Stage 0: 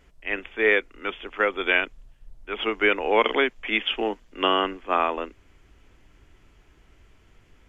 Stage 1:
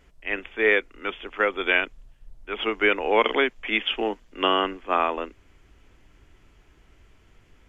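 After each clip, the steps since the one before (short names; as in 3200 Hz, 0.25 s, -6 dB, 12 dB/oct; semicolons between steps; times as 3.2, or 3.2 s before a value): nothing audible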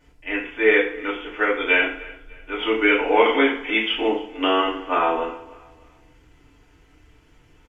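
feedback echo 0.299 s, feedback 35%, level -20.5 dB; FDN reverb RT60 0.52 s, low-frequency decay 1×, high-frequency decay 0.85×, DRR -6.5 dB; gain -4.5 dB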